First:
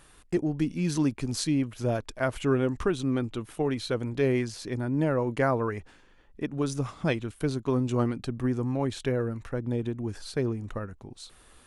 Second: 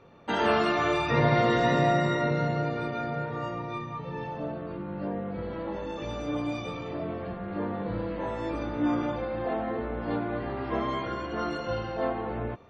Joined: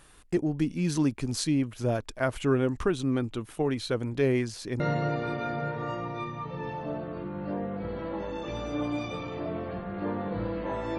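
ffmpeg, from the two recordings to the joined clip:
-filter_complex "[0:a]apad=whole_dur=10.98,atrim=end=10.98,atrim=end=4.802[a];[1:a]atrim=start=2.338:end=8.52[b];[a][b]acrossfade=d=0.004:c1=hsin:c2=hsin"

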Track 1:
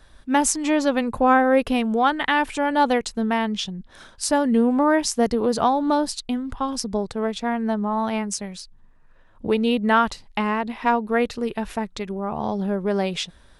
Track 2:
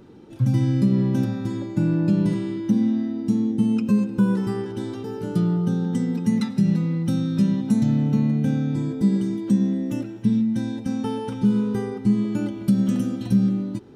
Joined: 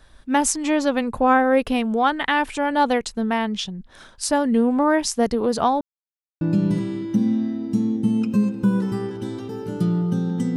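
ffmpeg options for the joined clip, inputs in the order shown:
-filter_complex "[0:a]apad=whole_dur=10.56,atrim=end=10.56,asplit=2[a][b];[a]atrim=end=5.81,asetpts=PTS-STARTPTS,afade=t=out:st=5.806:d=0.004:c=hsin[c];[b]atrim=start=5.81:end=6.41,asetpts=PTS-STARTPTS,volume=0[d];[1:a]atrim=start=1.96:end=6.11,asetpts=PTS-STARTPTS,afade=t=in:d=0.004:c=hsin[e];[c][d][e]concat=n=3:v=0:a=1"

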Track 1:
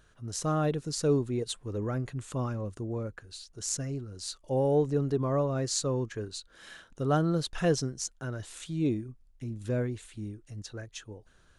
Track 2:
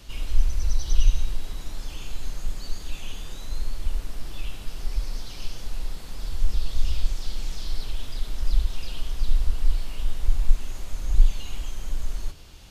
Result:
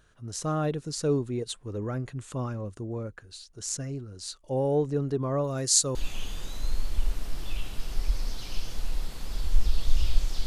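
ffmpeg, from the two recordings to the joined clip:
-filter_complex "[0:a]asettb=1/sr,asplit=3[a][b][c];[a]atrim=end=5.444[d];[b]atrim=start=5.44:end=5.95,asetpts=PTS-STARTPTS,afade=t=in:d=0.004:c=qsin,afade=t=out:st=0.506:d=0.004:c=qsin,aemphasis=mode=production:type=75fm[e];[c]atrim=start=5.946[f];[d][e]acrossfade=d=0.004:c1=hsin:c2=qsin[g];[g][f]acrossfade=d=0.004:c1=qsin:c2=hsin,apad=whole_dur=10.46,atrim=end=10.46,atrim=end=5.952[h];[1:a]atrim=start=2.828:end=7.34[i];[h][i]acrossfade=d=0.004:c1=hsin:c2=hsin"

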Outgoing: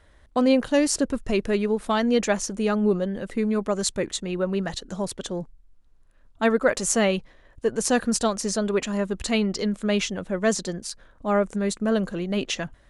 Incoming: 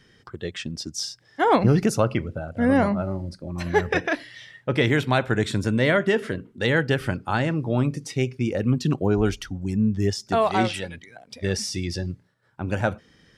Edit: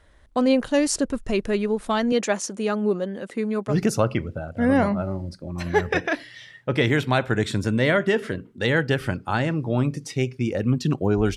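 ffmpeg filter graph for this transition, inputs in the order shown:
-filter_complex "[0:a]asettb=1/sr,asplit=3[a][b][c];[a]atrim=end=2.124[d];[b]atrim=start=2.12:end=3.77,asetpts=PTS-STARTPTS,afade=t=in:d=0.004:c=qsin,afade=t=out:st=1.646:d=0.004:c=qsin,highpass=200[e];[c]atrim=start=3.766[f];[d][e]acrossfade=d=0.004:c1=hsin:c2=qsin[g];[g][f]acrossfade=d=0.004:c1=qsin:c2=hsin,apad=whole_dur=11.36,atrim=end=11.36,atrim=end=3.77,asetpts=PTS-STARTPTS[h];[1:a]atrim=start=1.67:end=9.36,asetpts=PTS-STARTPTS[i];[h][i]acrossfade=d=0.1:c1=tri:c2=tri"

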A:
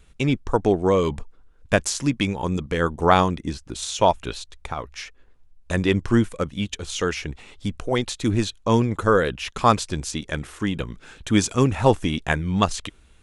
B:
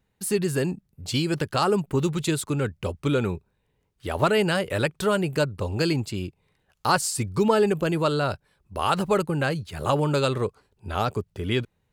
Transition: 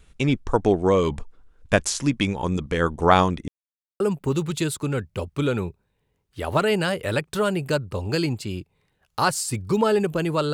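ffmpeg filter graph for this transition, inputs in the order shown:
-filter_complex "[0:a]apad=whole_dur=10.53,atrim=end=10.53,asplit=2[a][b];[a]atrim=end=3.48,asetpts=PTS-STARTPTS,afade=t=out:st=3.476:d=0.004:c=hsin[c];[b]atrim=start=3.48:end=4,asetpts=PTS-STARTPTS,volume=0[d];[1:a]atrim=start=1.67:end=8.2,asetpts=PTS-STARTPTS,afade=t=in:d=0.004:c=hsin[e];[c][d][e]concat=n=3:v=0:a=1"

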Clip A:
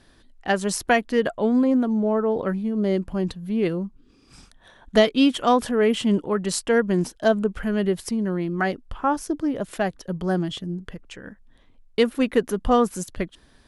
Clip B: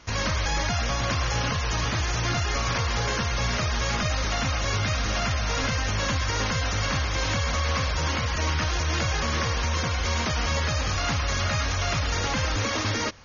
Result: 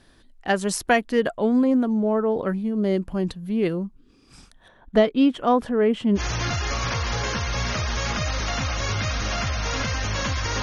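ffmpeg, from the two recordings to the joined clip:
-filter_complex "[0:a]asplit=3[a][b][c];[a]afade=t=out:st=4.67:d=0.02[d];[b]lowpass=f=1.4k:p=1,afade=t=in:st=4.67:d=0.02,afade=t=out:st=6.21:d=0.02[e];[c]afade=t=in:st=6.21:d=0.02[f];[d][e][f]amix=inputs=3:normalize=0,apad=whole_dur=10.62,atrim=end=10.62,atrim=end=6.21,asetpts=PTS-STARTPTS[g];[1:a]atrim=start=1.99:end=6.46,asetpts=PTS-STARTPTS[h];[g][h]acrossfade=d=0.06:c1=tri:c2=tri"

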